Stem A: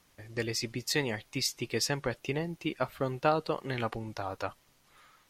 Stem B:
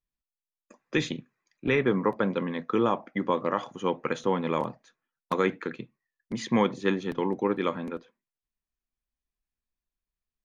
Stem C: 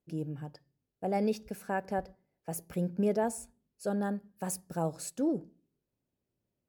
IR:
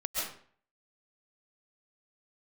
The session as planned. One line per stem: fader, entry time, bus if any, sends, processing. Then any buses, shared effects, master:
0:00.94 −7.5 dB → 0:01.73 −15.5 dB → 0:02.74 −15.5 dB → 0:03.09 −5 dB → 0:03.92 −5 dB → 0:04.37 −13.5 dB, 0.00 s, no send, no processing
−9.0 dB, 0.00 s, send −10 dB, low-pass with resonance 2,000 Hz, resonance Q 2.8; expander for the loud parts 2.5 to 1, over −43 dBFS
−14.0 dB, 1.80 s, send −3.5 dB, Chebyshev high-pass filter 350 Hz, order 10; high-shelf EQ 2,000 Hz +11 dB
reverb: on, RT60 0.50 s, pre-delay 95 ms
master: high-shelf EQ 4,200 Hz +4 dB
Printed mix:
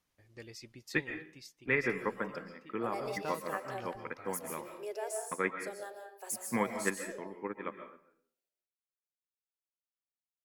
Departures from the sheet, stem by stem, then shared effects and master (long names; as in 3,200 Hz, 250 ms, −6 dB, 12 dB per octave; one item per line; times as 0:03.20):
stem A −7.5 dB → −16.0 dB
master: missing high-shelf EQ 4,200 Hz +4 dB